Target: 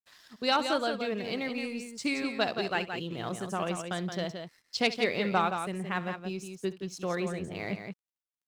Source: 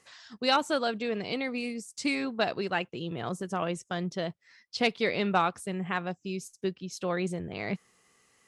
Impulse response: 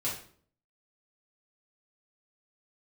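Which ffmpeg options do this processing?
-filter_complex "[0:a]asettb=1/sr,asplit=3[link_01][link_02][link_03];[link_01]atrim=end=2.264[link_04];[link_02]atrim=start=2.26:end=4.87,asetpts=PTS-STARTPTS,afade=type=in:duration=0.004:curve=qsin,afade=type=out:start_time=2.606:duration=0.004:curve=qsin,highshelf=frequency=3900:gain=6[link_05];[link_03]atrim=start=4.866[link_06];[link_04][link_05]acrossfade=duration=0.004:curve1=hsin:curve2=qsin[link_07];[link_07][link_06]acrossfade=duration=0.004:curve1=qsin:curve2=hsin,aeval=exprs='sgn(val(0))*max(abs(val(0))-0.00158,0)':channel_layout=same,aecho=1:1:67|172:0.141|0.447,volume=-1.5dB"

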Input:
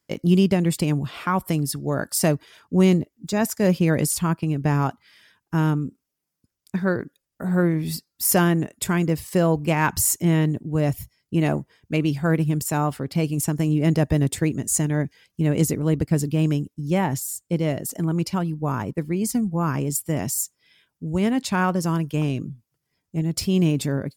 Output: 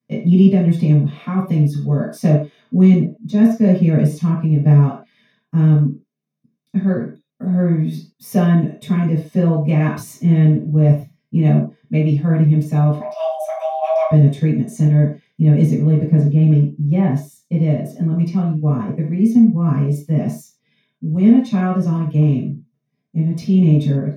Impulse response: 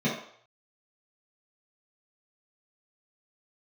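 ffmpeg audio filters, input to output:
-filter_complex "[0:a]asplit=3[link_01][link_02][link_03];[link_01]afade=type=out:start_time=12.99:duration=0.02[link_04];[link_02]afreqshift=480,afade=type=in:start_time=12.99:duration=0.02,afade=type=out:start_time=14.08:duration=0.02[link_05];[link_03]afade=type=in:start_time=14.08:duration=0.02[link_06];[link_04][link_05][link_06]amix=inputs=3:normalize=0,asettb=1/sr,asplit=3[link_07][link_08][link_09];[link_07]atrim=end=16.104[link_10];[link_08]atrim=start=16.1:end=17.07,asetpts=PTS-STARTPTS,afade=type=in:duration=0.004:curve=qsin,afade=type=out:start_time=0.966:duration=0.004:curve=qsin,lowpass=frequency=4000:poles=1[link_11];[link_09]atrim=start=17.066[link_12];[link_10][link_11]acrossfade=duration=0.004:curve1=hsin:curve2=qsin[link_13];[link_13][link_12]acrossfade=duration=0.004:curve1=qsin:curve2=hsin[link_14];[1:a]atrim=start_sample=2205,atrim=end_sample=6174[link_15];[link_14][link_15]afir=irnorm=-1:irlink=0,volume=-13.5dB"

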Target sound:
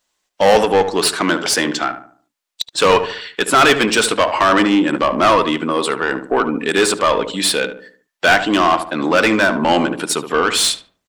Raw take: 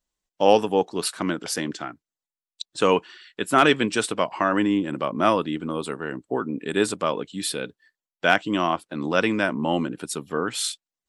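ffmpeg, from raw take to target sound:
ffmpeg -i in.wav -filter_complex "[0:a]asplit=2[link_01][link_02];[link_02]highpass=frequency=720:poles=1,volume=23dB,asoftclip=type=tanh:threshold=-3.5dB[link_03];[link_01][link_03]amix=inputs=2:normalize=0,lowpass=frequency=6400:poles=1,volume=-6dB,asplit=2[link_04][link_05];[link_05]adelay=73,lowpass=frequency=1400:poles=1,volume=-8.5dB,asplit=2[link_06][link_07];[link_07]adelay=73,lowpass=frequency=1400:poles=1,volume=0.42,asplit=2[link_08][link_09];[link_09]adelay=73,lowpass=frequency=1400:poles=1,volume=0.42,asplit=2[link_10][link_11];[link_11]adelay=73,lowpass=frequency=1400:poles=1,volume=0.42,asplit=2[link_12][link_13];[link_13]adelay=73,lowpass=frequency=1400:poles=1,volume=0.42[link_14];[link_06][link_08][link_10][link_12][link_14]amix=inputs=5:normalize=0[link_15];[link_04][link_15]amix=inputs=2:normalize=0" out.wav

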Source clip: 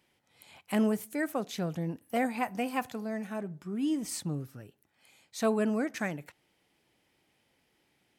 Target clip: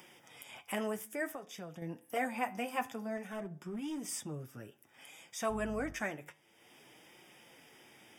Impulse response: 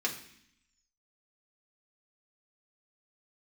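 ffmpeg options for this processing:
-filter_complex "[0:a]highpass=frequency=240:poles=1,asplit=2[link_01][link_02];[link_02]acompressor=mode=upward:threshold=-33dB:ratio=2.5,volume=0dB[link_03];[link_01][link_03]amix=inputs=2:normalize=0,flanger=delay=5.5:depth=3.7:regen=-35:speed=0.55:shape=sinusoidal,acrossover=split=500|1300[link_04][link_05][link_06];[link_04]alimiter=level_in=6.5dB:limit=-24dB:level=0:latency=1,volume=-6.5dB[link_07];[link_07][link_05][link_06]amix=inputs=3:normalize=0,asettb=1/sr,asplit=3[link_08][link_09][link_10];[link_08]atrim=end=1.314[link_11];[link_09]atrim=start=1.31:end=1.82,asetpts=PTS-STARTPTS,afade=type=in:duration=0.004:curve=qsin,afade=type=out:start_time=0.506:duration=0.004:curve=qsin,acompressor=threshold=-41dB:ratio=2.5[link_12];[link_10]atrim=start=1.816[link_13];[link_11][link_12]acrossfade=duration=0.004:curve1=hsin:curve2=qsin[link_14];[link_14][link_13]acrossfade=duration=0.004:curve1=qsin:curve2=hsin,asettb=1/sr,asplit=3[link_15][link_16][link_17];[link_15]atrim=end=5.504[link_18];[link_16]atrim=start=5.5:end=5.93,asetpts=PTS-STARTPTS,afade=type=in:duration=0.004:curve=qsin,afade=type=out:start_time=0.426:duration=0.004:curve=qsin,aeval=exprs='val(0)+0.00891*(sin(2*PI*50*n/s)+sin(2*PI*2*50*n/s)/2+sin(2*PI*3*50*n/s)/3+sin(2*PI*4*50*n/s)/4+sin(2*PI*5*50*n/s)/5)':channel_layout=same[link_19];[link_17]atrim=start=5.926[link_20];[link_18][link_19]acrossfade=duration=0.004:curve1=hsin:curve2=qsin[link_21];[link_21][link_20]acrossfade=duration=0.004:curve1=qsin:curve2=hsin,flanger=delay=7.8:depth=3.4:regen=-85:speed=0.27:shape=triangular,asettb=1/sr,asplit=3[link_22][link_23][link_24];[link_22]atrim=end=3.174[link_25];[link_23]atrim=start=3.17:end=4.08,asetpts=PTS-STARTPTS,afade=type=in:duration=0.004:curve=qsin,afade=type=out:start_time=0.906:duration=0.004:curve=qsin,asoftclip=type=hard:threshold=-36dB[link_26];[link_24]atrim=start=4.076[link_27];[link_25][link_26]acrossfade=duration=0.004:curve1=hsin:curve2=qsin[link_28];[link_28][link_27]acrossfade=duration=0.004:curve1=qsin:curve2=hsin,asuperstop=centerf=4200:order=12:qfactor=4.8"

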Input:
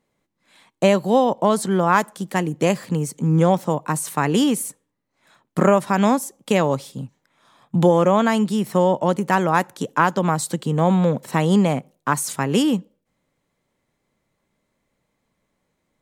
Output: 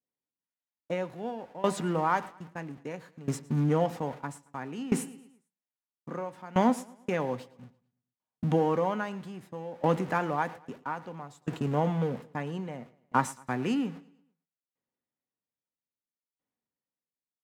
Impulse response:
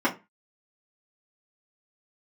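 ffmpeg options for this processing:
-filter_complex "[0:a]aeval=exprs='val(0)+0.5*0.0422*sgn(val(0))':channel_layout=same,highpass=71,aemphasis=mode=reproduction:type=cd,agate=range=-56dB:threshold=-25dB:ratio=16:detection=peak,adynamicequalizer=threshold=0.0224:dfrequency=2000:dqfactor=0.73:tfrequency=2000:tqfactor=0.73:attack=5:release=100:ratio=0.375:range=2.5:mode=boostabove:tftype=bell,dynaudnorm=framelen=170:gausssize=9:maxgain=5.5dB,aecho=1:1:103|206|309|412:0.1|0.05|0.025|0.0125,asplit=2[link_01][link_02];[1:a]atrim=start_sample=2205[link_03];[link_02][link_03]afir=irnorm=-1:irlink=0,volume=-24dB[link_04];[link_01][link_04]amix=inputs=2:normalize=0,asetrate=40517,aresample=44100,aeval=exprs='val(0)*pow(10,-20*if(lt(mod(0.61*n/s,1),2*abs(0.61)/1000),1-mod(0.61*n/s,1)/(2*abs(0.61)/1000),(mod(0.61*n/s,1)-2*abs(0.61)/1000)/(1-2*abs(0.61)/1000))/20)':channel_layout=same,volume=-8.5dB"

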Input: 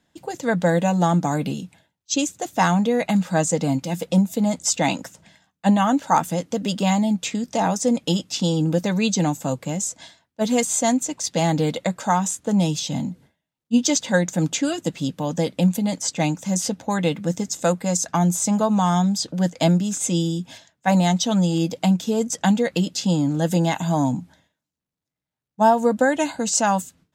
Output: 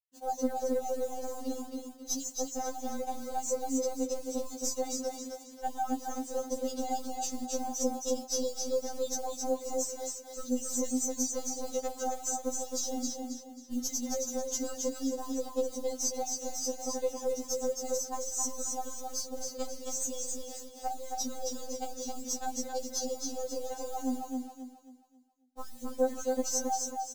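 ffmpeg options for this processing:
ffmpeg -i in.wav -filter_complex "[0:a]acrossover=split=140|3000[link_01][link_02][link_03];[link_02]acompressor=threshold=-25dB:ratio=4[link_04];[link_01][link_04][link_03]amix=inputs=3:normalize=0,highpass=110,equalizer=frequency=310:width_type=q:width=4:gain=-9,equalizer=frequency=470:width_type=q:width=4:gain=6,equalizer=frequency=690:width_type=q:width=4:gain=10,equalizer=frequency=2500:width_type=q:width=4:gain=-10,equalizer=frequency=3500:width_type=q:width=4:gain=-9,equalizer=frequency=6000:width_type=q:width=4:gain=6,lowpass=frequency=7200:width=0.5412,lowpass=frequency=7200:width=1.3066,acompressor=threshold=-27dB:ratio=8,acrusher=bits=7:mix=0:aa=0.000001,asplit=2[link_05][link_06];[link_06]aecho=0:1:269|538|807|1076|1345:0.668|0.234|0.0819|0.0287|0.01[link_07];[link_05][link_07]amix=inputs=2:normalize=0,aeval=exprs='0.211*(cos(1*acos(clip(val(0)/0.211,-1,1)))-cos(1*PI/2))+0.0596*(cos(2*acos(clip(val(0)/0.211,-1,1)))-cos(2*PI/2))':channel_layout=same,equalizer=frequency=1900:width=0.88:gain=-10.5,afftfilt=real='re*3.46*eq(mod(b,12),0)':imag='im*3.46*eq(mod(b,12),0)':win_size=2048:overlap=0.75" out.wav

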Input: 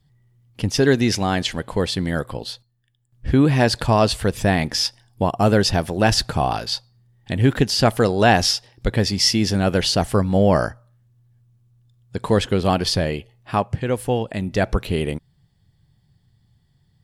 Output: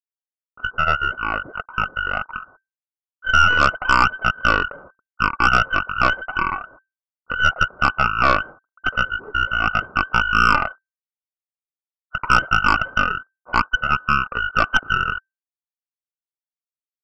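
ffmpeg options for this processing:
ffmpeg -i in.wav -af "dynaudnorm=framelen=500:gausssize=7:maxgain=16.5dB,acrusher=bits=5:mix=0:aa=0.5,adynamicsmooth=sensitivity=2:basefreq=1700,lowpass=frequency=2300:width_type=q:width=0.5098,lowpass=frequency=2300:width_type=q:width=0.6013,lowpass=frequency=2300:width_type=q:width=0.9,lowpass=frequency=2300:width_type=q:width=2.563,afreqshift=-2700,asetrate=25476,aresample=44100,atempo=1.73107,aeval=exprs='1.41*(cos(1*acos(clip(val(0)/1.41,-1,1)))-cos(1*PI/2))+0.2*(cos(6*acos(clip(val(0)/1.41,-1,1)))-cos(6*PI/2))':channel_layout=same,volume=-4.5dB" out.wav

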